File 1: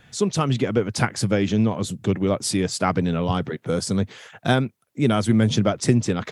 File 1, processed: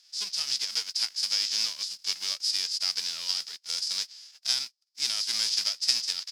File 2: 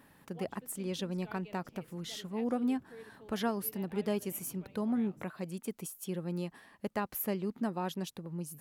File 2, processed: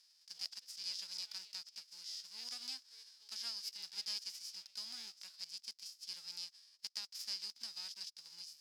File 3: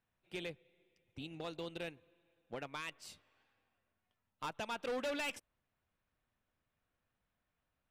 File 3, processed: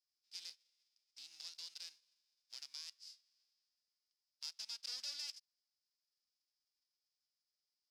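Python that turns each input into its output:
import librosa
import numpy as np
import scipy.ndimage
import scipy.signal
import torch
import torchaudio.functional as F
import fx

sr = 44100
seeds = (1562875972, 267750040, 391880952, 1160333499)

y = fx.envelope_flatten(x, sr, power=0.3)
y = fx.bandpass_q(y, sr, hz=5000.0, q=9.0)
y = y * librosa.db_to_amplitude(8.0)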